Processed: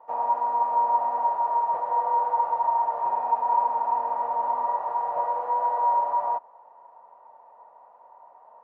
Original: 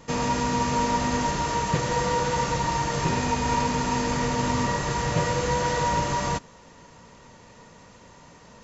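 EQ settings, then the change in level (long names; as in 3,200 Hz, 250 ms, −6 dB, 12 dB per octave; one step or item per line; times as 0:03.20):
flat-topped band-pass 800 Hz, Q 2.4
+6.0 dB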